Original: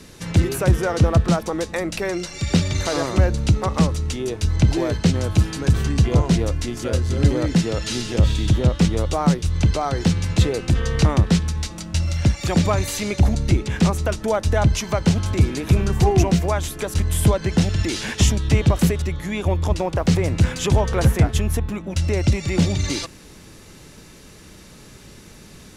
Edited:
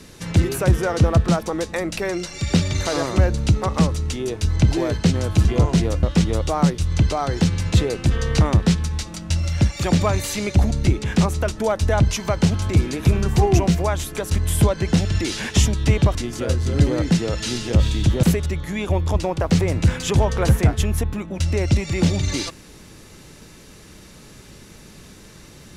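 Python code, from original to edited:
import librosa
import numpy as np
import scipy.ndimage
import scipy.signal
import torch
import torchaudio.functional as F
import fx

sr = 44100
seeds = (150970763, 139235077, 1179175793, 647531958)

y = fx.edit(x, sr, fx.cut(start_s=5.45, length_s=0.56),
    fx.move(start_s=6.59, length_s=2.08, to_s=18.79), tone=tone)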